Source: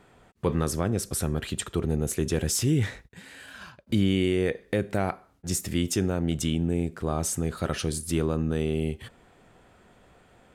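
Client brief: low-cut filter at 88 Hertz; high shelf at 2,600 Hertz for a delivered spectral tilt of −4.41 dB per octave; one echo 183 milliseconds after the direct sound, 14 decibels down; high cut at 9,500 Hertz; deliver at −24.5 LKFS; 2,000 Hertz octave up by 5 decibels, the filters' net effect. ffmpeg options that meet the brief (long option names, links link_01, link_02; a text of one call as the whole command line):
ffmpeg -i in.wav -af "highpass=88,lowpass=9500,equalizer=frequency=2000:width_type=o:gain=4.5,highshelf=frequency=2600:gain=3.5,aecho=1:1:183:0.2,volume=2.5dB" out.wav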